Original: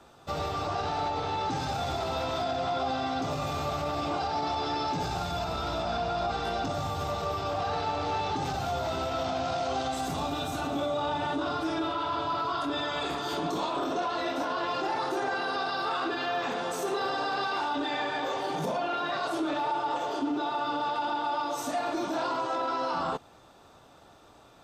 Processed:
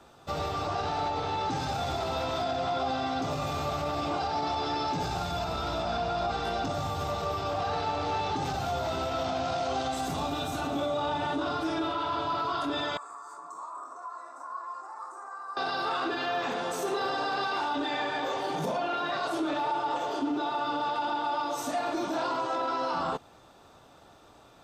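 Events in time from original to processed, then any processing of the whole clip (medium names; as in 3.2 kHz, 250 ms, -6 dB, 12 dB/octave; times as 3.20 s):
12.97–15.57 s: two resonant band-passes 3 kHz, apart 2.8 oct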